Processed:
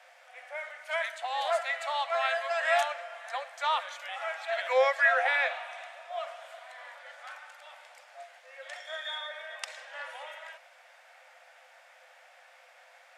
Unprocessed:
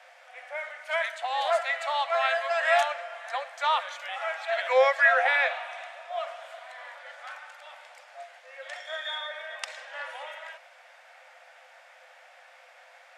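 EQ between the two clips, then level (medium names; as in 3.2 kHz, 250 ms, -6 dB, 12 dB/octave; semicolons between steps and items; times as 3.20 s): treble shelf 7.9 kHz +6 dB; -3.5 dB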